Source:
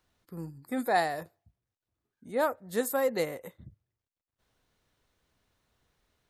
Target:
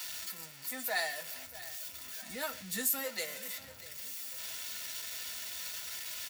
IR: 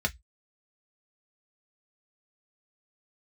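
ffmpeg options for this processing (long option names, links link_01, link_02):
-filter_complex "[0:a]aeval=exprs='val(0)+0.5*0.0188*sgn(val(0))':channel_layout=same,aderivative[link_01];[1:a]atrim=start_sample=2205[link_02];[link_01][link_02]afir=irnorm=-1:irlink=0,asplit=3[link_03][link_04][link_05];[link_03]afade=type=out:start_time=2.28:duration=0.02[link_06];[link_04]asubboost=boost=9:cutoff=220,afade=type=in:start_time=2.28:duration=0.02,afade=type=out:start_time=3.03:duration=0.02[link_07];[link_05]afade=type=in:start_time=3.03:duration=0.02[link_08];[link_06][link_07][link_08]amix=inputs=3:normalize=0,aecho=1:1:638|1276|1914|2552:0.141|0.0593|0.0249|0.0105"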